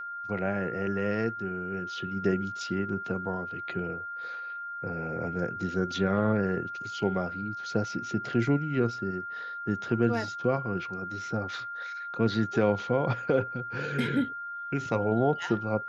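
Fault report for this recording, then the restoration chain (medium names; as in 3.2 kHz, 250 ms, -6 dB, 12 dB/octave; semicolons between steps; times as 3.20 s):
whine 1.4 kHz -35 dBFS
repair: band-stop 1.4 kHz, Q 30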